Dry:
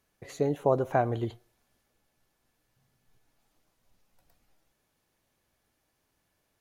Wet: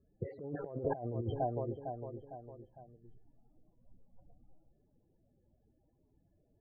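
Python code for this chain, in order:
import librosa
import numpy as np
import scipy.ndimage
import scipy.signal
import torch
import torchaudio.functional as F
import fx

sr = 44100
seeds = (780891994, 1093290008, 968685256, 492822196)

p1 = fx.peak_eq(x, sr, hz=8200.0, db=-11.5, octaves=0.89)
p2 = fx.spec_topn(p1, sr, count=16)
p3 = fx.env_lowpass(p2, sr, base_hz=510.0, full_db=-24.5)
p4 = p3 + fx.echo_feedback(p3, sr, ms=455, feedback_pct=44, wet_db=-18.0, dry=0)
p5 = fx.over_compress(p4, sr, threshold_db=-39.0, ratio=-1.0)
y = p5 * 10.0 ** (1.0 / 20.0)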